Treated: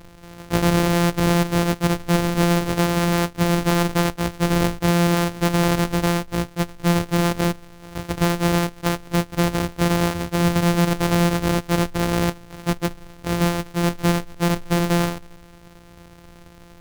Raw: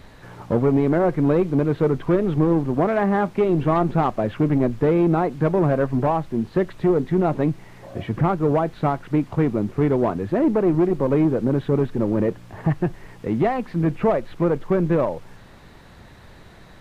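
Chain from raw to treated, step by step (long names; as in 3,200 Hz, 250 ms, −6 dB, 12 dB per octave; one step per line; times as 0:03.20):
samples sorted by size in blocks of 256 samples
level that may rise only so fast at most 450 dB per second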